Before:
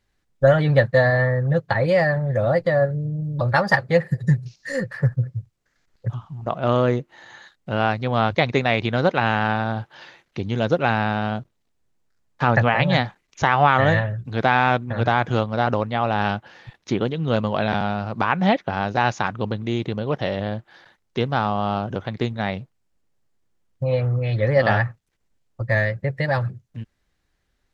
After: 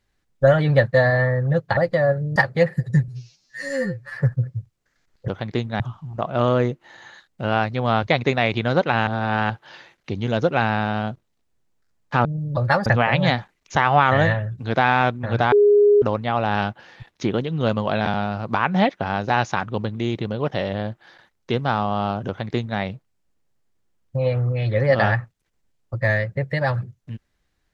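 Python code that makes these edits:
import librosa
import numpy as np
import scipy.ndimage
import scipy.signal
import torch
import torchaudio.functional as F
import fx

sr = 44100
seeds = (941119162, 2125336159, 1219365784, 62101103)

y = fx.edit(x, sr, fx.cut(start_s=1.77, length_s=0.73),
    fx.move(start_s=3.09, length_s=0.61, to_s=12.53),
    fx.stretch_span(start_s=4.42, length_s=0.54, factor=2.0),
    fx.reverse_span(start_s=9.35, length_s=0.43),
    fx.bleep(start_s=15.19, length_s=0.5, hz=412.0, db=-10.5),
    fx.duplicate(start_s=21.94, length_s=0.52, to_s=6.08), tone=tone)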